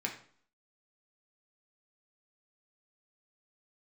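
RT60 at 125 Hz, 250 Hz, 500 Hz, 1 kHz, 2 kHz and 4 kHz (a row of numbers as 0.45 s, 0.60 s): 0.50 s, 0.60 s, 0.50 s, 0.55 s, 0.45 s, 0.45 s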